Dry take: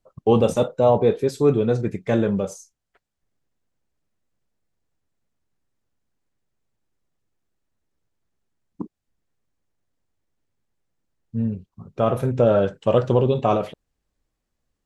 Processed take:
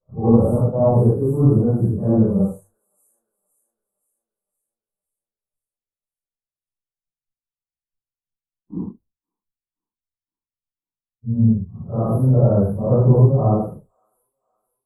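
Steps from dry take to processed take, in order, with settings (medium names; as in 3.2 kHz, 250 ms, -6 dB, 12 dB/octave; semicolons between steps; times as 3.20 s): phase randomisation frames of 200 ms; treble shelf 8.1 kHz +7 dB; in parallel at -7 dB: saturation -17.5 dBFS, distortion -10 dB; on the sum: inverse Chebyshev band-stop 2.1–5.6 kHz, stop band 50 dB; tone controls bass +14 dB, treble -4 dB; hum notches 50/100 Hz; expander -37 dBFS; on a send: feedback echo behind a high-pass 516 ms, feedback 51%, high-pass 5.6 kHz, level -7.5 dB; on the sum: trim -4.5 dB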